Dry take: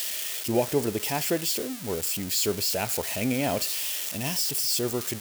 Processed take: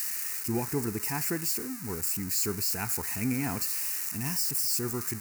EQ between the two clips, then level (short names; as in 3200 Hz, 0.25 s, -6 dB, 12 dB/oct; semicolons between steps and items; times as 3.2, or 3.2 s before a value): fixed phaser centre 1400 Hz, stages 4; 0.0 dB